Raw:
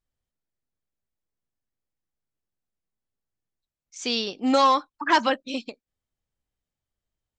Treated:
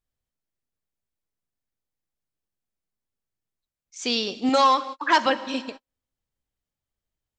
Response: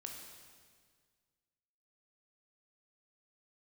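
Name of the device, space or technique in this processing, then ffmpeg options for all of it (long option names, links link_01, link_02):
keyed gated reverb: -filter_complex "[0:a]asplit=3[link_01][link_02][link_03];[1:a]atrim=start_sample=2205[link_04];[link_02][link_04]afir=irnorm=-1:irlink=0[link_05];[link_03]apad=whole_len=325626[link_06];[link_05][link_06]sidechaingate=range=-47dB:threshold=-41dB:ratio=16:detection=peak,volume=-4.5dB[link_07];[link_01][link_07]amix=inputs=2:normalize=0,asettb=1/sr,asplit=3[link_08][link_09][link_10];[link_08]atrim=end=4.494[link_11];[link_09]atrim=start=4.49:end=5.26,asetpts=PTS-STARTPTS,afade=type=in:duration=0.004:curve=qsin,afade=type=out:start_time=0.766:duration=0.004:curve=qsin,lowshelf=frequency=250:gain=-9.5[link_12];[link_10]atrim=start=5.256[link_13];[link_11][link_12]acrossfade=duration=0.004:curve1=hsin:curve2=qsin[link_14];[link_14][link_13]acrossfade=duration=0.004:curve1=qsin:curve2=hsin,volume=-1dB"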